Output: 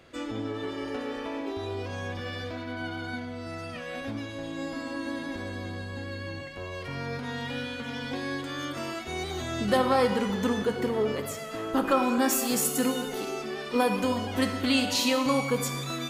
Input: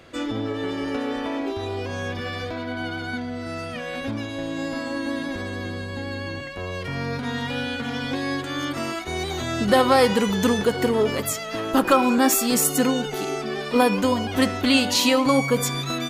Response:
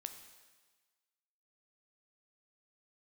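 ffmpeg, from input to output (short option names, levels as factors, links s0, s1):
-filter_complex "[0:a]asettb=1/sr,asplit=3[s0][s1][s2];[s0]atrim=end=9.774[s3];[s1]atrim=start=9.77:end=11.97,asetpts=PTS-STARTPTS,afade=t=in:d=0.004:c=qsin,afade=t=out:st=2.196:d=0.004:c=qsin,highshelf=f=3600:g=-7[s4];[s2]atrim=start=11.966[s5];[s3][s4]acrossfade=d=0.004:c1=hsin:c2=qsin[s6];[s6][s5]acrossfade=d=0.004:c1=qsin:c2=hsin[s7];[1:a]atrim=start_sample=2205[s8];[s7][s8]afir=irnorm=-1:irlink=0,volume=0.75"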